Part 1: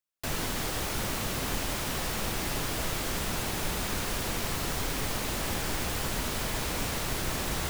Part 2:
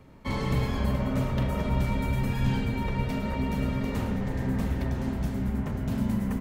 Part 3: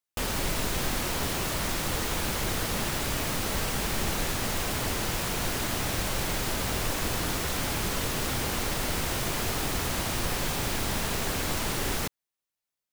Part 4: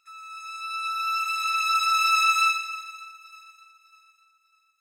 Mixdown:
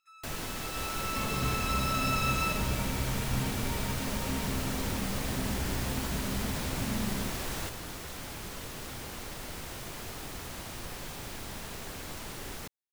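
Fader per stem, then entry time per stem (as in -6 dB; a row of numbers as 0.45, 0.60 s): -5.5, -7.0, -11.5, -11.0 dB; 0.00, 0.90, 0.60, 0.00 s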